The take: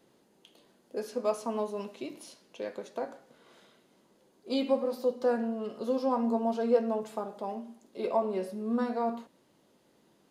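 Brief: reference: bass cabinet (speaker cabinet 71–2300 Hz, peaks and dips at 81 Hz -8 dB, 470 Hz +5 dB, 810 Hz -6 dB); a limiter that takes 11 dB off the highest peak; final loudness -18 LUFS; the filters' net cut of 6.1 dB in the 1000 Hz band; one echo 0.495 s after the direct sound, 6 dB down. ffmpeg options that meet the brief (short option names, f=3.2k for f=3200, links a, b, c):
-af "equalizer=f=1k:t=o:g=-5.5,alimiter=level_in=2dB:limit=-24dB:level=0:latency=1,volume=-2dB,highpass=f=71:w=0.5412,highpass=f=71:w=1.3066,equalizer=f=81:t=q:w=4:g=-8,equalizer=f=470:t=q:w=4:g=5,equalizer=f=810:t=q:w=4:g=-6,lowpass=f=2.3k:w=0.5412,lowpass=f=2.3k:w=1.3066,aecho=1:1:495:0.501,volume=16.5dB"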